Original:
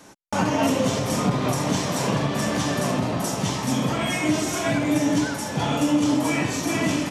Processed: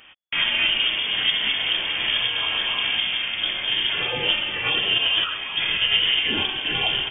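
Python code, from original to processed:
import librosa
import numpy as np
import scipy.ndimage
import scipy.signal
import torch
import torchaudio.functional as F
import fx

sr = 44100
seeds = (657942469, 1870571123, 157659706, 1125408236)

y = fx.formant_shift(x, sr, semitones=5)
y = fx.freq_invert(y, sr, carrier_hz=3400)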